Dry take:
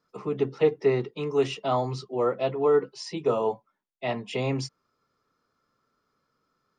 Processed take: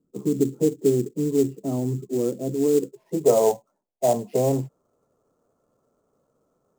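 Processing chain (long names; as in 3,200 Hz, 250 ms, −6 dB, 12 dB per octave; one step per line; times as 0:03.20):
in parallel at 0 dB: downward compressor, threshold −31 dBFS, peak gain reduction 14.5 dB
on the sum: low-pass filter sweep 300 Hz → 650 Hz, 0:02.74–0:03.24
sample-rate reduction 7,600 Hz, jitter 20%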